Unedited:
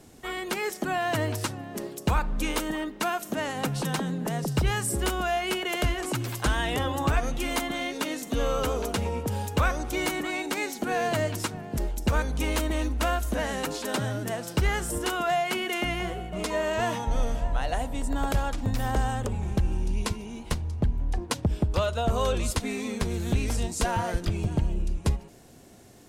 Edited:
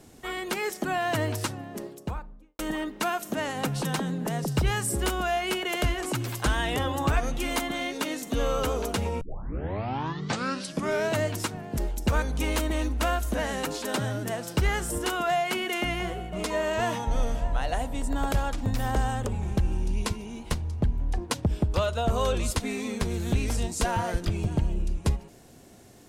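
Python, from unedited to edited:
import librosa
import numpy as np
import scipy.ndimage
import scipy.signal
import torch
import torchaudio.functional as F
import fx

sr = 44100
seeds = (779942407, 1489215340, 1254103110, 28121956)

y = fx.studio_fade_out(x, sr, start_s=1.47, length_s=1.12)
y = fx.edit(y, sr, fx.tape_start(start_s=9.21, length_s=2.01), tone=tone)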